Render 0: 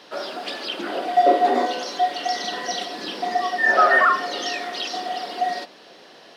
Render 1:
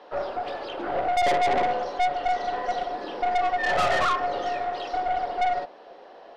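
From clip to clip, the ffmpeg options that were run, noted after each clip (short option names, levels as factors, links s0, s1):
-af "bandpass=f=670:t=q:w=1.6:csg=0,aeval=exprs='(tanh(20*val(0)+0.35)-tanh(0.35))/20':c=same,bandreject=f=640:w=16,volume=2.11"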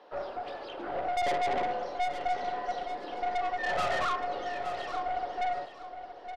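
-af "aecho=1:1:868|1736|2604:0.299|0.0657|0.0144,volume=0.447"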